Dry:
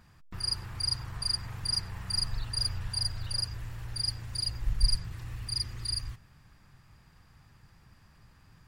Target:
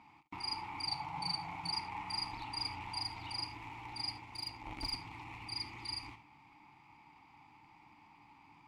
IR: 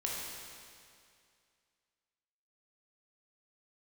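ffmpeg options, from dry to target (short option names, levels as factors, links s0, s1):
-filter_complex "[0:a]asplit=2[s0][s1];[1:a]atrim=start_sample=2205,atrim=end_sample=3528[s2];[s1][s2]afir=irnorm=-1:irlink=0,volume=0.562[s3];[s0][s3]amix=inputs=2:normalize=0,asplit=3[s4][s5][s6];[s4]afade=t=out:st=0.86:d=0.02[s7];[s5]afreqshift=-190,afade=t=in:st=0.86:d=0.02,afade=t=out:st=1.71:d=0.02[s8];[s6]afade=t=in:st=1.71:d=0.02[s9];[s7][s8][s9]amix=inputs=3:normalize=0,asplit=2[s10][s11];[s11]acrusher=bits=2:mode=log:mix=0:aa=0.000001,volume=0.447[s12];[s10][s12]amix=inputs=2:normalize=0,asplit=3[s13][s14][s15];[s13]bandpass=f=300:t=q:w=8,volume=1[s16];[s14]bandpass=f=870:t=q:w=8,volume=0.501[s17];[s15]bandpass=f=2240:t=q:w=8,volume=0.355[s18];[s16][s17][s18]amix=inputs=3:normalize=0,asettb=1/sr,asplit=3[s19][s20][s21];[s19]atrim=end=4.184[s22];[s20]atrim=start=4.18:end=4.92,asetpts=PTS-STARTPTS,afade=t=in:d=0.004:c=qsin,afade=t=out:st=0.736:d=0.004:c=qsin,aeval=exprs='0.0211*(cos(1*acos(clip(val(0)/0.0211,-1,1)))-cos(1*PI/2))+0.00106*(cos(7*acos(clip(val(0)/0.0211,-1,1)))-cos(7*PI/2))':c=same[s23];[s21]atrim=start=4.916[s24];[s22][s23]acrossfade=d=0.004:c1=hsin:c2=qsin[s25];[s25][s24]acrossfade=d=0.004:c1=qsin:c2=hsin,lowshelf=f=470:t=q:w=1.5:g=-8,volume=3.98"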